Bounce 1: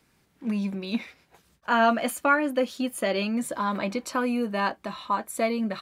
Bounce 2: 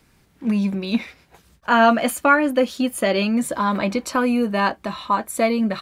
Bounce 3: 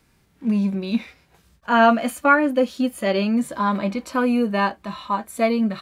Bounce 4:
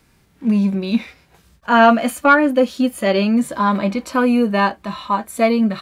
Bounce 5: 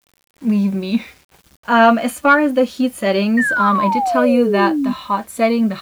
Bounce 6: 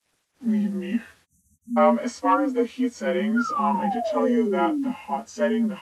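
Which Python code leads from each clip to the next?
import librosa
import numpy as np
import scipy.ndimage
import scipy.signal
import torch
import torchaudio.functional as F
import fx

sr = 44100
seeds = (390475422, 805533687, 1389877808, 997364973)

y1 = fx.low_shelf(x, sr, hz=84.0, db=10.0)
y1 = y1 * librosa.db_to_amplitude(6.0)
y2 = fx.hpss(y1, sr, part='percussive', gain_db=-9)
y3 = 10.0 ** (-4.0 / 20.0) * np.tanh(y2 / 10.0 ** (-4.0 / 20.0))
y3 = y3 * librosa.db_to_amplitude(4.5)
y4 = fx.spec_paint(y3, sr, seeds[0], shape='fall', start_s=3.37, length_s=1.56, low_hz=240.0, high_hz=1900.0, level_db=-18.0)
y4 = fx.quant_dither(y4, sr, seeds[1], bits=8, dither='none')
y5 = fx.partial_stretch(y4, sr, pct=87)
y5 = fx.spec_erase(y5, sr, start_s=1.26, length_s=0.51, low_hz=270.0, high_hz=5800.0)
y5 = y5 * librosa.db_to_amplitude(-6.5)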